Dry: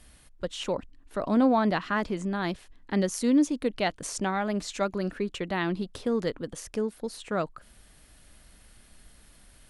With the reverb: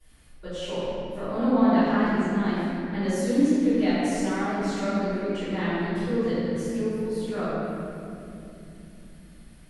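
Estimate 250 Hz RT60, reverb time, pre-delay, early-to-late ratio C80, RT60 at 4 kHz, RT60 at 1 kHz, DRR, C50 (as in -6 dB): 5.1 s, 3.0 s, 3 ms, -3.5 dB, 1.8 s, 2.5 s, -21.0 dB, -5.5 dB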